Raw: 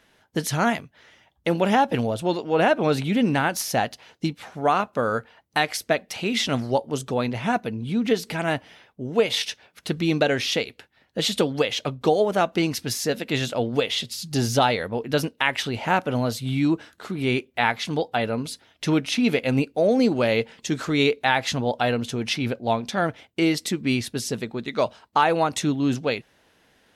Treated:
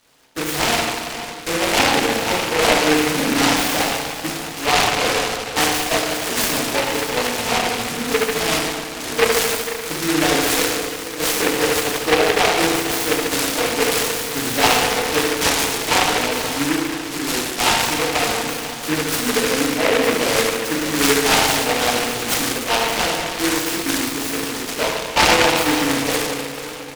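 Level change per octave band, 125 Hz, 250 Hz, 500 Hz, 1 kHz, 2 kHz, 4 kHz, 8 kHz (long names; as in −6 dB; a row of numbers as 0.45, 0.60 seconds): −3.0, +1.5, +3.5, +5.0, +8.0, +9.0, +13.5 decibels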